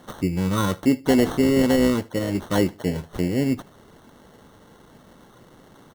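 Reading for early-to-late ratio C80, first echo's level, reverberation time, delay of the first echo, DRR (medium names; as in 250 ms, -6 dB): no reverb, -23.5 dB, no reverb, 74 ms, no reverb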